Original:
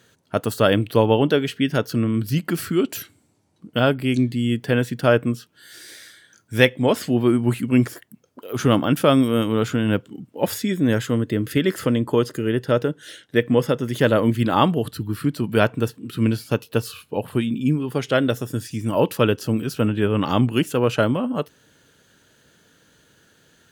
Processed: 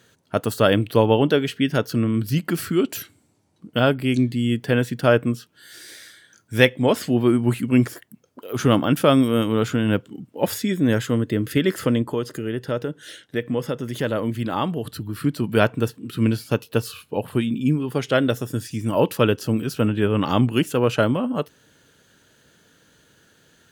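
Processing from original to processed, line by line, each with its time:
0:12.02–0:15.16: downward compressor 1.5 to 1, threshold −30 dBFS

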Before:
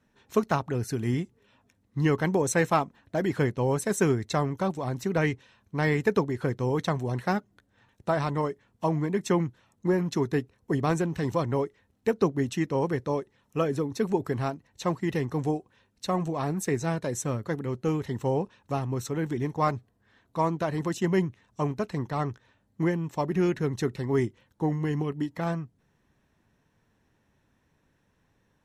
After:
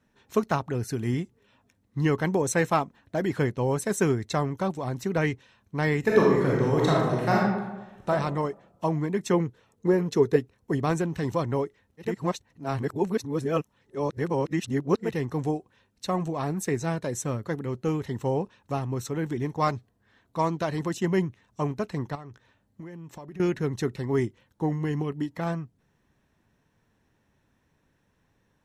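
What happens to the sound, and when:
0:06.00–0:08.09: thrown reverb, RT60 1.1 s, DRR −4.5 dB
0:09.33–0:10.36: parametric band 450 Hz +14.5 dB 0.28 octaves
0:12.09–0:15.08: reverse, crossfade 0.24 s
0:19.53–0:20.83: dynamic equaliser 4,600 Hz, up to +6 dB, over −48 dBFS, Q 0.84
0:22.15–0:23.40: downward compressor 10 to 1, threshold −38 dBFS

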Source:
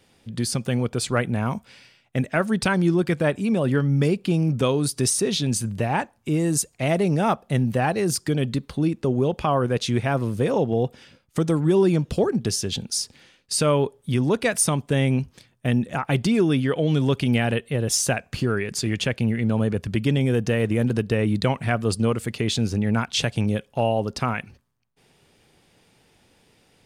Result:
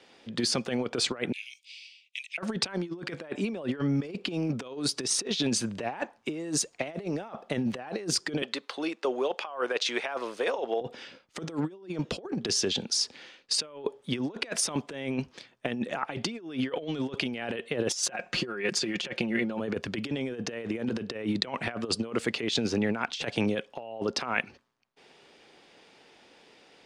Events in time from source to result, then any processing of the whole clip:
0:01.32–0:02.38: Butterworth high-pass 2,300 Hz 72 dB per octave
0:08.42–0:10.81: high-pass filter 620 Hz
0:17.90–0:19.60: comb filter 5.6 ms
whole clip: three-way crossover with the lows and the highs turned down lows −20 dB, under 250 Hz, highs −23 dB, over 6,600 Hz; compressor whose output falls as the input rises −30 dBFS, ratio −0.5

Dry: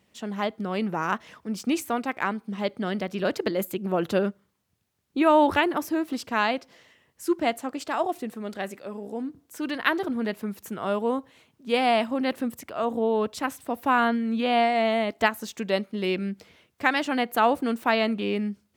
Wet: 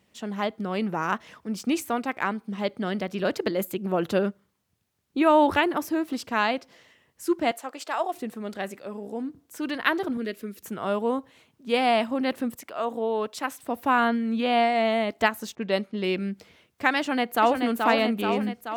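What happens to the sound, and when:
0:07.51–0:08.14: high-pass filter 490 Hz
0:10.17–0:10.63: phaser with its sweep stopped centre 350 Hz, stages 4
0:12.55–0:13.62: high-pass filter 400 Hz 6 dB per octave
0:15.55–0:16.13: low-pass that shuts in the quiet parts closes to 850 Hz, open at −23 dBFS
0:16.99–0:17.63: delay throw 430 ms, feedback 65%, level −4.5 dB

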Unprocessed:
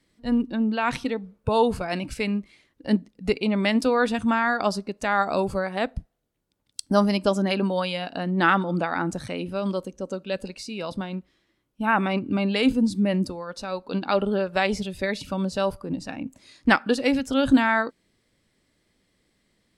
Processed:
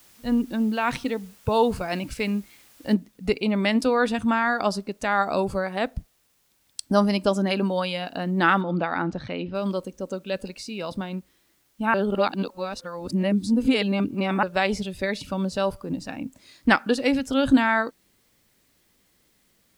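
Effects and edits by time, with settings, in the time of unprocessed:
0:02.94: noise floor change −55 dB −67 dB
0:08.61–0:09.55: low-pass filter 4,400 Hz 24 dB per octave
0:11.94–0:14.43: reverse

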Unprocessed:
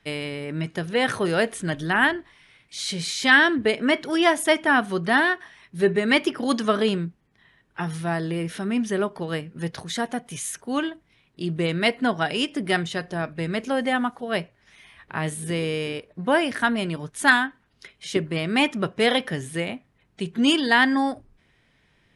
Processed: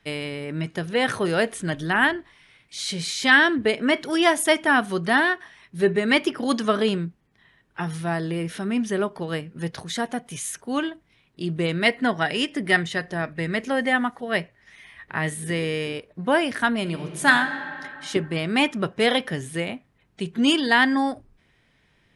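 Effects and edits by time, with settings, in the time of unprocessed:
0:03.96–0:05.13: high-shelf EQ 5,200 Hz +4.5 dB
0:11.85–0:15.85: parametric band 1,900 Hz +9 dB 0.23 octaves
0:16.81–0:17.31: thrown reverb, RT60 2.5 s, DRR 5.5 dB

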